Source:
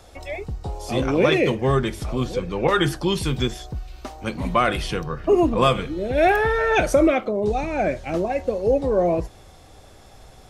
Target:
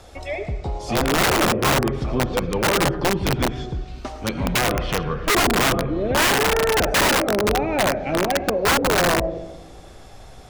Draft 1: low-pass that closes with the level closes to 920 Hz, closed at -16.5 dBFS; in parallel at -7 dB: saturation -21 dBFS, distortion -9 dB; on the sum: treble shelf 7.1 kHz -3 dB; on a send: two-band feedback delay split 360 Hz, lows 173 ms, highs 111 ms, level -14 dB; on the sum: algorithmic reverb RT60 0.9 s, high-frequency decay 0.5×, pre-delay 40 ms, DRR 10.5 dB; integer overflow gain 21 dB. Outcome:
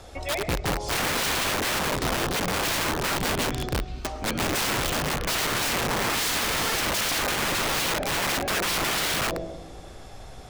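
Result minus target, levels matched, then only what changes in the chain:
integer overflow: distortion +19 dB
change: integer overflow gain 13 dB

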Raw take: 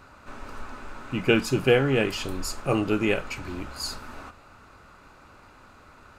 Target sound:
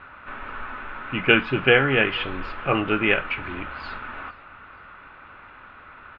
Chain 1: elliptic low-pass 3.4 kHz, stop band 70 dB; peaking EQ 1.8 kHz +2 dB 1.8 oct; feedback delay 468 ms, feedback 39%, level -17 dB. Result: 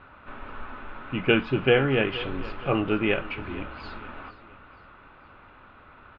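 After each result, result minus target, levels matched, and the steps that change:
echo-to-direct +9 dB; 2 kHz band -4.0 dB
change: feedback delay 468 ms, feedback 39%, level -26 dB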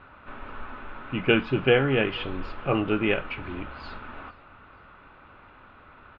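2 kHz band -4.0 dB
change: peaking EQ 1.8 kHz +11 dB 1.8 oct

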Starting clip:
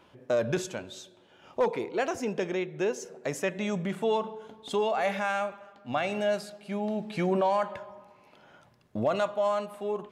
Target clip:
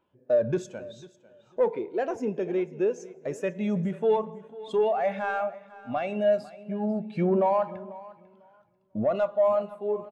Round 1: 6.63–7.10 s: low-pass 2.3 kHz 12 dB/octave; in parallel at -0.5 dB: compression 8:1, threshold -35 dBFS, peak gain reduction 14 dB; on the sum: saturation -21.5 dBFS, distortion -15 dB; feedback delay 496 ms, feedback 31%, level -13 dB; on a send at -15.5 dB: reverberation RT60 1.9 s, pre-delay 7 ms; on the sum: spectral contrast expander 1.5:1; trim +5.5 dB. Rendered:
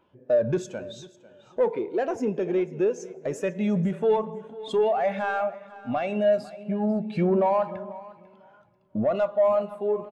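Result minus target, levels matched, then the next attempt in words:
compression: peak gain reduction +14 dB
6.63–7.10 s: low-pass 2.3 kHz 12 dB/octave; saturation -21.5 dBFS, distortion -17 dB; feedback delay 496 ms, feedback 31%, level -13 dB; on a send at -15.5 dB: reverberation RT60 1.9 s, pre-delay 7 ms; on the sum: spectral contrast expander 1.5:1; trim +5.5 dB

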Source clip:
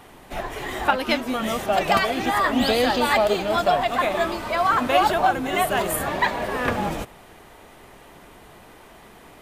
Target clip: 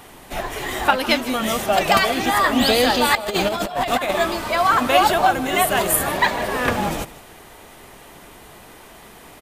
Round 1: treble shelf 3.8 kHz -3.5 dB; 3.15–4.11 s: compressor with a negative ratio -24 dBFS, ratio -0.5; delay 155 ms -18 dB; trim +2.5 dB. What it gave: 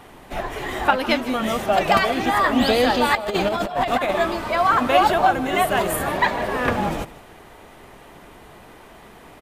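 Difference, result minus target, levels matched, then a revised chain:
8 kHz band -7.5 dB
treble shelf 3.8 kHz +7 dB; 3.15–4.11 s: compressor with a negative ratio -24 dBFS, ratio -0.5; delay 155 ms -18 dB; trim +2.5 dB

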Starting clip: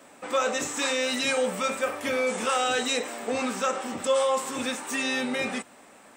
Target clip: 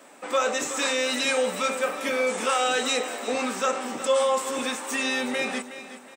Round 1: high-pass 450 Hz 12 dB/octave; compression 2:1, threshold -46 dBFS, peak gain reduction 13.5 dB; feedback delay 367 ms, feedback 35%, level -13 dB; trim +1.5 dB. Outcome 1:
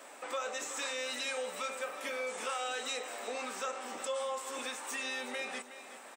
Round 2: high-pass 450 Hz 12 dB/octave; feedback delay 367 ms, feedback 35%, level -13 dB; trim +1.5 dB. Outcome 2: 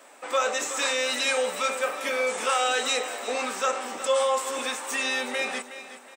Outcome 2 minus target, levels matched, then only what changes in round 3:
250 Hz band -7.5 dB
change: high-pass 220 Hz 12 dB/octave

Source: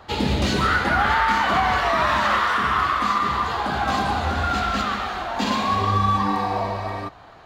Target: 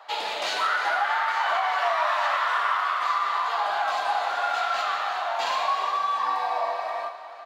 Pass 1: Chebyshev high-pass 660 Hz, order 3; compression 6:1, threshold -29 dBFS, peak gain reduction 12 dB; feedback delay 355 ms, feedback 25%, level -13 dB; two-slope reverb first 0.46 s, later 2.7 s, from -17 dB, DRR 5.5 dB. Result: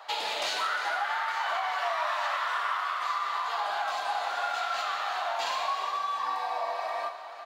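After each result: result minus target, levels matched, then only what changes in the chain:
compression: peak gain reduction +6 dB; 8 kHz band +4.5 dB
change: compression 6:1, threshold -22 dBFS, peak gain reduction 6.5 dB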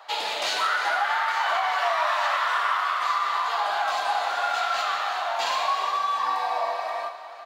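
8 kHz band +4.0 dB
add after Chebyshev high-pass: treble shelf 3.8 kHz -6 dB

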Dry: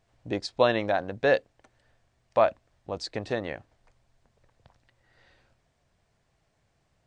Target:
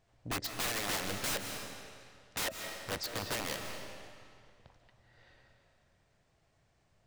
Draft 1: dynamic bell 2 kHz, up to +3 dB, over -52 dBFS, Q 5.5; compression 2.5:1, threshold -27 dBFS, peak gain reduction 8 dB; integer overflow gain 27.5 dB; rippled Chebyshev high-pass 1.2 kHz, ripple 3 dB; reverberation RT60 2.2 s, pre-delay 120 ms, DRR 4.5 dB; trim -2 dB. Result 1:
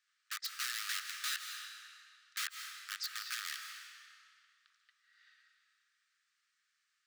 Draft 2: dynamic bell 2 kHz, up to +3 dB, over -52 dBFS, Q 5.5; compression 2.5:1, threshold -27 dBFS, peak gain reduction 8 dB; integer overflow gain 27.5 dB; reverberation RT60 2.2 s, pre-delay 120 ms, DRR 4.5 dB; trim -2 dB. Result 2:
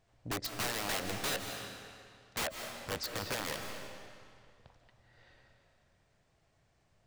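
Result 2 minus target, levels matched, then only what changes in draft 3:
compression: peak gain reduction +4 dB
change: compression 2.5:1, threshold -20.5 dBFS, peak gain reduction 4 dB

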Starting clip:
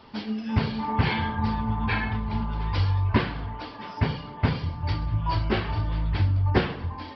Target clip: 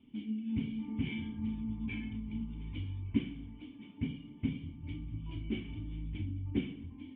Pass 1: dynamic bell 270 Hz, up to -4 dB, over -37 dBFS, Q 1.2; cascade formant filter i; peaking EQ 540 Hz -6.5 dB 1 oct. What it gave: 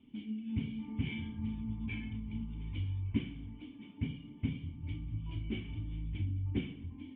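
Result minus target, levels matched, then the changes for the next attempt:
125 Hz band +3.0 dB
change: dynamic bell 100 Hz, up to -4 dB, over -37 dBFS, Q 1.2

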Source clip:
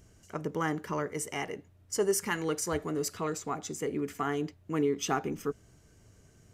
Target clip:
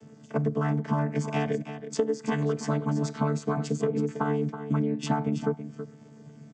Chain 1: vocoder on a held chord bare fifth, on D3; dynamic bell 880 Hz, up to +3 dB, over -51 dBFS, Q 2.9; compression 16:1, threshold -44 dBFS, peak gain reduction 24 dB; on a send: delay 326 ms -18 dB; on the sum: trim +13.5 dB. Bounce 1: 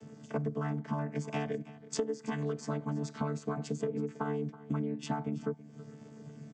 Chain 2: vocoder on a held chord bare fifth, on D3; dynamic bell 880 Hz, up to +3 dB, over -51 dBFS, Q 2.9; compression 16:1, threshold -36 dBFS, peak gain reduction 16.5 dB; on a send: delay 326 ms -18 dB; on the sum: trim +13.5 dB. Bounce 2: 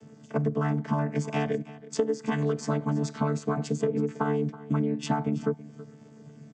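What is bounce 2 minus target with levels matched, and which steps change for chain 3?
echo-to-direct -7 dB
change: delay 326 ms -11 dB

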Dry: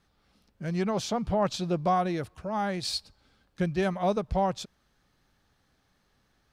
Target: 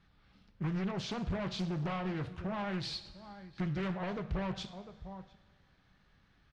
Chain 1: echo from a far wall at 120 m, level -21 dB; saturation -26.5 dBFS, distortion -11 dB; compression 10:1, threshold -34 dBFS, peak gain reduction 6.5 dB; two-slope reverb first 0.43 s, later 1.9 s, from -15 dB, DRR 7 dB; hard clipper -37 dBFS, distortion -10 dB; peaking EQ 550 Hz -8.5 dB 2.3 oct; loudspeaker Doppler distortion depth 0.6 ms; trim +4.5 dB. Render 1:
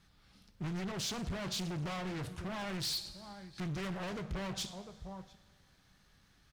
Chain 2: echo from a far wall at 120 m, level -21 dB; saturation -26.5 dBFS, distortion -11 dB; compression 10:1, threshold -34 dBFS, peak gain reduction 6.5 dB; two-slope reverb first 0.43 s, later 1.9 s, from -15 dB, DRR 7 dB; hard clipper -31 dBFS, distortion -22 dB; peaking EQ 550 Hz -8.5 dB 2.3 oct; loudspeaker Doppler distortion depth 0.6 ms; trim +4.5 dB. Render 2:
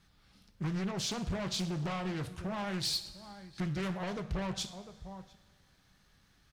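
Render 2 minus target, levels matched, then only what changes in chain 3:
4 kHz band +4.5 dB
add after hard clipper: low-pass 3.1 kHz 12 dB/octave

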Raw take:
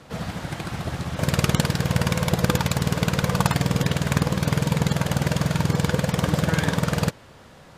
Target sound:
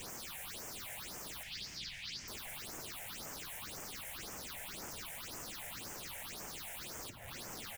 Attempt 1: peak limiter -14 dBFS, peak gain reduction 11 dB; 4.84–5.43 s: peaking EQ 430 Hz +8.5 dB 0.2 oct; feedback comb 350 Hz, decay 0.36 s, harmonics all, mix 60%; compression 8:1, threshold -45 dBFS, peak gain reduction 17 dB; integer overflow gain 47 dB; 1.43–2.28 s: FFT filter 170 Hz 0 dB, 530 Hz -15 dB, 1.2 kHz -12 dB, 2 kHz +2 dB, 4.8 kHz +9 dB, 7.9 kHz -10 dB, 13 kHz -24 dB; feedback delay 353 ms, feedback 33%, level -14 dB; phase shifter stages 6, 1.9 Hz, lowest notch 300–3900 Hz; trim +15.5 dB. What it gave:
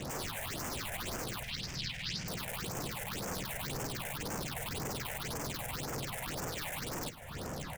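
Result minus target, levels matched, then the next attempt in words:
integer overflow: distortion -34 dB
peak limiter -14 dBFS, peak gain reduction 11 dB; 4.84–5.43 s: peaking EQ 430 Hz +8.5 dB 0.2 oct; feedback comb 350 Hz, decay 0.36 s, harmonics all, mix 60%; compression 8:1, threshold -45 dBFS, peak gain reduction 17 dB; integer overflow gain 54.5 dB; 1.43–2.28 s: FFT filter 170 Hz 0 dB, 530 Hz -15 dB, 1.2 kHz -12 dB, 2 kHz +2 dB, 4.8 kHz +9 dB, 7.9 kHz -10 dB, 13 kHz -24 dB; feedback delay 353 ms, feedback 33%, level -14 dB; phase shifter stages 6, 1.9 Hz, lowest notch 300–3900 Hz; trim +15.5 dB

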